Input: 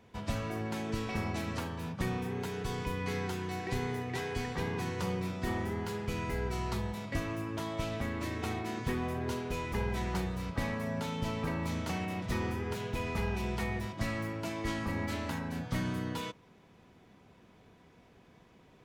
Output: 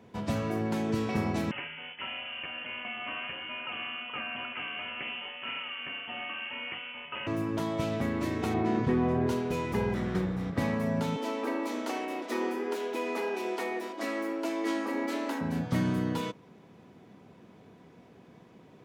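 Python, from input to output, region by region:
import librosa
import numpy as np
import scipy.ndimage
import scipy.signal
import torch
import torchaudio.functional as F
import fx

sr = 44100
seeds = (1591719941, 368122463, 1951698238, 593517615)

y = fx.chain(x, sr, fx.clip_hard(threshold_db=-30.0),
    fx.highpass(hz=330.0, slope=12),
    fx.freq_invert(carrier_hz=3200), at=(1.51, 7.27))
y = fx.chain(y, sr, fx.lowpass(hz=7300.0, slope=12),
    fx.high_shelf(hz=2700.0, db=-10.5),
    fx.env_flatten(amount_pct=50), at=(8.54, 9.27))
y = fx.chain(y, sr, fx.lower_of_two(delay_ms=0.54),
    fx.high_shelf(hz=4600.0, db=-10.5), at=(9.94, 10.57))
y = fx.chain(y, sr, fx.steep_highpass(hz=250.0, slope=72),
    fx.echo_single(ms=76, db=-17.5), at=(11.16, 15.41))
y = scipy.signal.sosfilt(scipy.signal.butter(2, 140.0, 'highpass', fs=sr, output='sos'), y)
y = fx.tilt_shelf(y, sr, db=4.0, hz=780.0)
y = y * librosa.db_to_amplitude(4.5)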